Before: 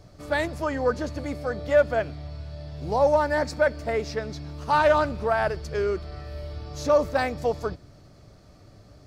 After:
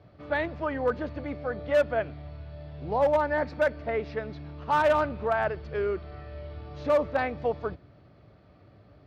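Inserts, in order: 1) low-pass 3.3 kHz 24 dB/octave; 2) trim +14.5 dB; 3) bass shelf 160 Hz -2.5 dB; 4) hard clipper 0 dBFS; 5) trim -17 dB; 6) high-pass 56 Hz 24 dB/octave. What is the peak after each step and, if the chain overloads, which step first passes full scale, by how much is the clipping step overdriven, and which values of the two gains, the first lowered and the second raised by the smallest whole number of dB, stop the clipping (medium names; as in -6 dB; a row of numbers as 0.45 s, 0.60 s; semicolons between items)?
-10.0 dBFS, +4.5 dBFS, +4.5 dBFS, 0.0 dBFS, -17.0 dBFS, -14.0 dBFS; step 2, 4.5 dB; step 2 +9.5 dB, step 5 -12 dB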